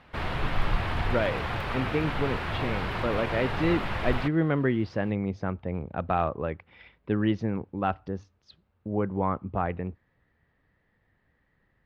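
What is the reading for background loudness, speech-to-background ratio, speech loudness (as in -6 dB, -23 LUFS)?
-31.5 LUFS, 1.5 dB, -30.0 LUFS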